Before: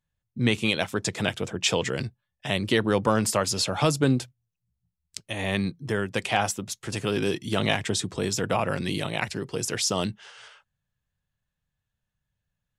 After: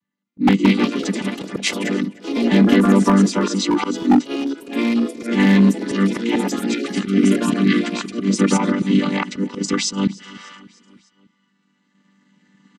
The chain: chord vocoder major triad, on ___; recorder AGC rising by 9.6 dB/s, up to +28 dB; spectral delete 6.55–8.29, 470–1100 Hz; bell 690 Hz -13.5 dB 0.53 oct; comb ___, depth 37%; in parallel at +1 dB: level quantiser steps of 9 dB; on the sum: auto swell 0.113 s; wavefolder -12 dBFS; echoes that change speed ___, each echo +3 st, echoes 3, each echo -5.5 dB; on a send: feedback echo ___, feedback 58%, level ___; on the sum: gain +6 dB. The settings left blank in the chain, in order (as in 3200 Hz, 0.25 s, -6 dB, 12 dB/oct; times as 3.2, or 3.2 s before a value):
G3, 1 ms, 0.25 s, 0.299 s, -22 dB